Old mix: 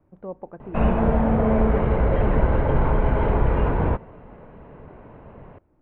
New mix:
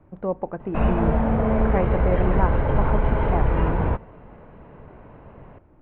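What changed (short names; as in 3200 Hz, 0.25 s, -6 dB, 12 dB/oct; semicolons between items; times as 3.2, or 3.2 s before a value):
speech +10.5 dB; master: add bell 350 Hz -2.5 dB 2.1 oct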